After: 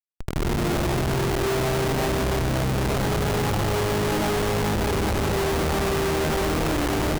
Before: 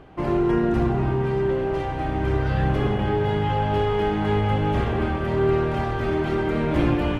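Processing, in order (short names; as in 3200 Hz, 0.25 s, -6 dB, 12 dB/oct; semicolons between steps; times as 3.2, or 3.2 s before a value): in parallel at +1.5 dB: limiter -21 dBFS, peak gain reduction 11 dB; on the sum: resonator 650 Hz, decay 0.5 s, mix 90%; AGC gain up to 14 dB; de-hum 116.2 Hz, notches 15; on a send: feedback echo 0.559 s, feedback 17%, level -3 dB; on the sum: Schmitt trigger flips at -29 dBFS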